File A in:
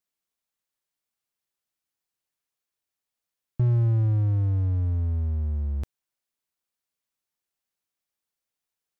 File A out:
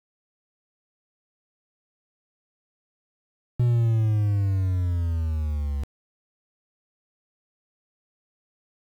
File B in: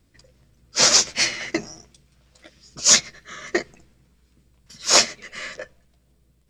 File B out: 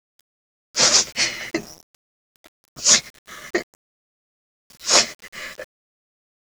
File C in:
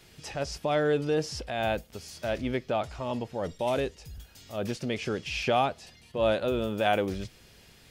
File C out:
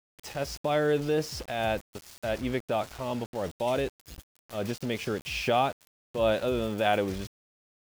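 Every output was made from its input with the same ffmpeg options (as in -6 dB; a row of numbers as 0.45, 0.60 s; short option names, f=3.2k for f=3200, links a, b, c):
-af "aeval=exprs='val(0)*gte(abs(val(0)),0.0106)':c=same"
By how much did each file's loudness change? 0.0, 0.0, 0.0 LU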